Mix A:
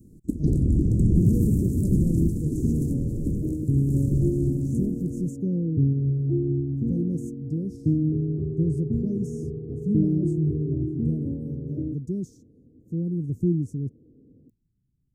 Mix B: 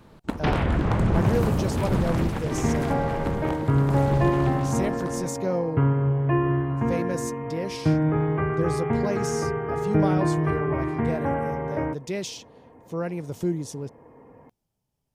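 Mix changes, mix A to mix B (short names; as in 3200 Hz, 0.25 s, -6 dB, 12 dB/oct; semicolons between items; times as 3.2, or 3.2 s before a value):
speech: add tone controls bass -9 dB, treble +14 dB; first sound -3.0 dB; master: remove elliptic band-stop 330–7300 Hz, stop band 50 dB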